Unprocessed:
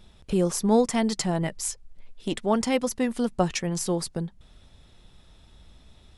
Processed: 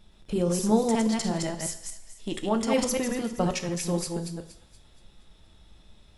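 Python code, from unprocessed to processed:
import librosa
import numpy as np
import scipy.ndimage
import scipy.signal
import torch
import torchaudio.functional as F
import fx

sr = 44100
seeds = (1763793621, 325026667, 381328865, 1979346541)

y = fx.reverse_delay(x, sr, ms=119, wet_db=-2.5)
y = fx.transient(y, sr, attack_db=3, sustain_db=8, at=(2.74, 3.22))
y = fx.echo_wet_highpass(y, sr, ms=236, feedback_pct=43, hz=1500.0, wet_db=-13.0)
y = fx.rev_double_slope(y, sr, seeds[0], early_s=0.65, late_s=2.1, knee_db=-26, drr_db=8.0)
y = y * 10.0 ** (-4.5 / 20.0)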